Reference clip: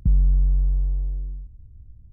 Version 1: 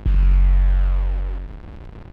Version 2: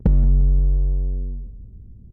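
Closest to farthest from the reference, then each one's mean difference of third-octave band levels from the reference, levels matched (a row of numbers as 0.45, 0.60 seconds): 2, 1; 2.5, 15.0 decibels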